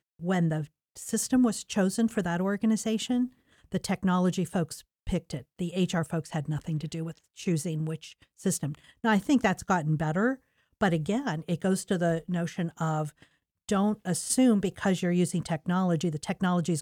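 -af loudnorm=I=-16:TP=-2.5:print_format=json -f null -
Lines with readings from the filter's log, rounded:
"input_i" : "-28.4",
"input_tp" : "-10.6",
"input_lra" : "3.3",
"input_thresh" : "-38.7",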